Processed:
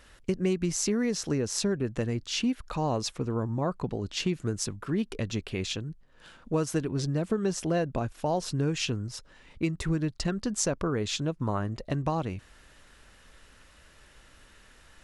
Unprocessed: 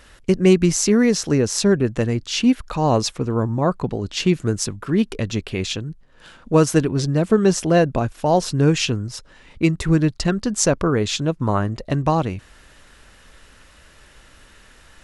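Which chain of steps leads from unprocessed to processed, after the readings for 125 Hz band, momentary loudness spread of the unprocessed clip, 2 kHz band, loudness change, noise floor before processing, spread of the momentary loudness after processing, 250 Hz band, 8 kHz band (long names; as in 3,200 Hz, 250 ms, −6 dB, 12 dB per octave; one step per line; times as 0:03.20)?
−10.0 dB, 9 LU, −10.0 dB, −10.5 dB, −50 dBFS, 5 LU, −11.0 dB, −8.5 dB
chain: downward compressor 3 to 1, threshold −18 dBFS, peak gain reduction 7.5 dB
level −7 dB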